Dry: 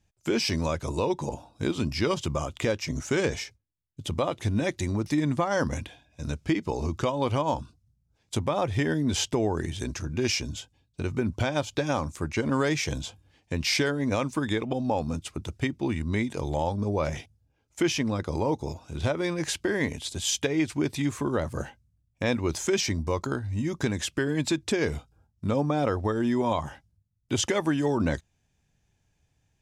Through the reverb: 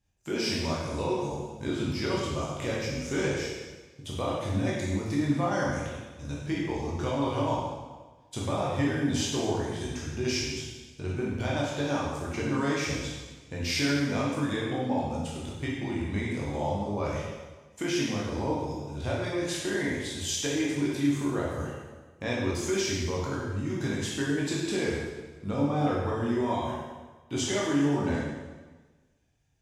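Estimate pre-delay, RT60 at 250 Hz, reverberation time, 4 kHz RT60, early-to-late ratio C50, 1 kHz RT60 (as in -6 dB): 7 ms, 1.3 s, 1.3 s, 1.2 s, -0.5 dB, 1.3 s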